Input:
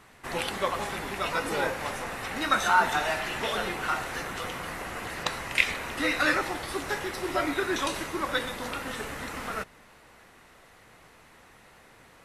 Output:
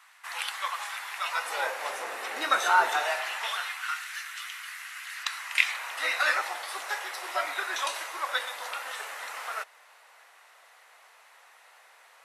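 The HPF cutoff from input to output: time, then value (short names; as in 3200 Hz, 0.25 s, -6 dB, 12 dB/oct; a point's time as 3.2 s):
HPF 24 dB/oct
1.12 s 970 Hz
2.09 s 390 Hz
2.84 s 390 Hz
3.97 s 1500 Hz
5.06 s 1500 Hz
6.08 s 640 Hz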